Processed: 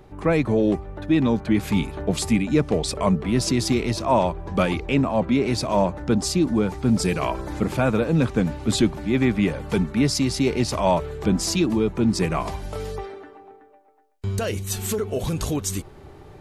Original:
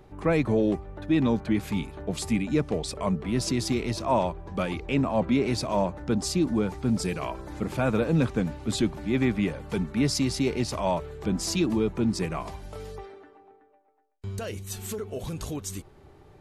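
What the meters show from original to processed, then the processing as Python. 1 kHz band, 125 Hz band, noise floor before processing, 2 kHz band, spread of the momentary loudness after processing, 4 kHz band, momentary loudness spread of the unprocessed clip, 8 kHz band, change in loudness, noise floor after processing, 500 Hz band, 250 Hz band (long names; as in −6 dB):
+5.5 dB, +5.0 dB, −55 dBFS, +5.0 dB, 7 LU, +5.0 dB, 11 LU, +6.0 dB, +5.0 dB, −47 dBFS, +5.0 dB, +5.0 dB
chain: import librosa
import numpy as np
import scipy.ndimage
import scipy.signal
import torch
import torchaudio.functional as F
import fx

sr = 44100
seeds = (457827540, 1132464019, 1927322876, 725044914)

y = fx.rider(x, sr, range_db=3, speed_s=0.5)
y = F.gain(torch.from_numpy(y), 5.5).numpy()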